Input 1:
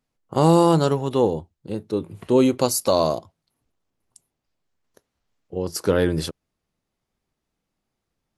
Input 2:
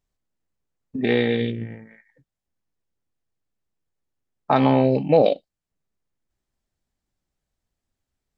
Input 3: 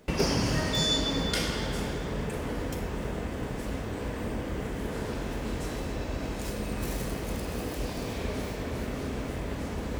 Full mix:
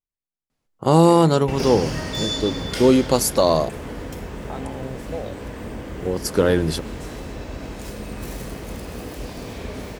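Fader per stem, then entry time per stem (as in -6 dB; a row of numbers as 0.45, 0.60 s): +2.0, -16.0, +0.5 dB; 0.50, 0.00, 1.40 s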